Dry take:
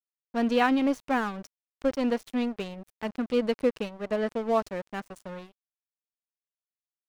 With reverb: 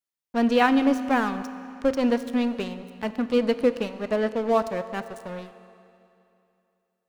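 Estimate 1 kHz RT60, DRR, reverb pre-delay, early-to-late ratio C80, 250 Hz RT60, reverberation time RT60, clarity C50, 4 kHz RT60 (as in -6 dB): 2.8 s, 11.5 dB, 9 ms, 13.0 dB, 2.8 s, 2.8 s, 12.5 dB, 2.6 s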